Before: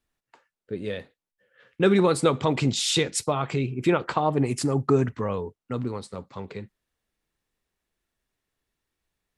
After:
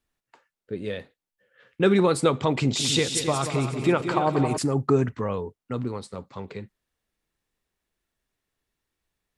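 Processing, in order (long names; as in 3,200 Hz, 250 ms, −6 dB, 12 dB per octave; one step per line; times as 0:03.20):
0:02.52–0:04.58: echo machine with several playback heads 91 ms, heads second and third, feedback 40%, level −9.5 dB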